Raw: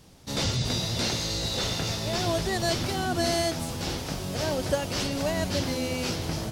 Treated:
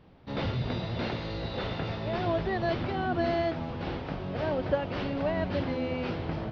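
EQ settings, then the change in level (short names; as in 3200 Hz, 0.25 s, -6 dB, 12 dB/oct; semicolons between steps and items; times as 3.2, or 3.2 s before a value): Gaussian blur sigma 3.1 samples; low shelf 200 Hz -3.5 dB; 0.0 dB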